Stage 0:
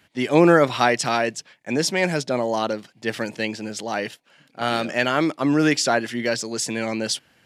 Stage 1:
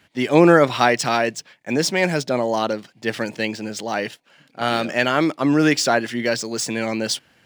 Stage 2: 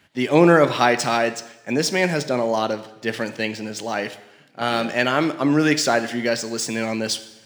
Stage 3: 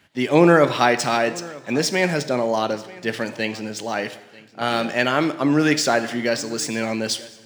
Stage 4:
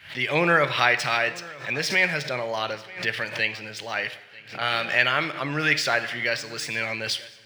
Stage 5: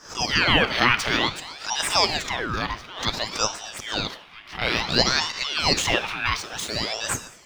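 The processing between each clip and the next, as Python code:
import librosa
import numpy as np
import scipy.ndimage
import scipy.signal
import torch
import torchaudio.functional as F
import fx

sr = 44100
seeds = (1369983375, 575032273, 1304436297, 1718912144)

y1 = scipy.ndimage.median_filter(x, 3, mode='constant')
y1 = F.gain(torch.from_numpy(y1), 2.0).numpy()
y2 = fx.rev_plate(y1, sr, seeds[0], rt60_s=0.95, hf_ratio=0.95, predelay_ms=0, drr_db=11.0)
y2 = F.gain(torch.from_numpy(y2), -1.0).numpy()
y3 = y2 + 10.0 ** (-21.5 / 20.0) * np.pad(y2, (int(938 * sr / 1000.0), 0))[:len(y2)]
y4 = fx.curve_eq(y3, sr, hz=(140.0, 240.0, 530.0, 830.0, 2200.0, 4800.0, 7100.0, 11000.0), db=(0, -13, -3, -3, 9, 2, -7, -1))
y4 = fx.pre_swell(y4, sr, db_per_s=130.0)
y4 = F.gain(torch.from_numpy(y4), -4.5).numpy()
y5 = scipy.signal.sosfilt(scipy.signal.butter(2, 160.0, 'highpass', fs=sr, output='sos'), y4)
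y5 = fx.ring_lfo(y5, sr, carrier_hz=1900.0, swing_pct=75, hz=0.56)
y5 = F.gain(torch.from_numpy(y5), 4.0).numpy()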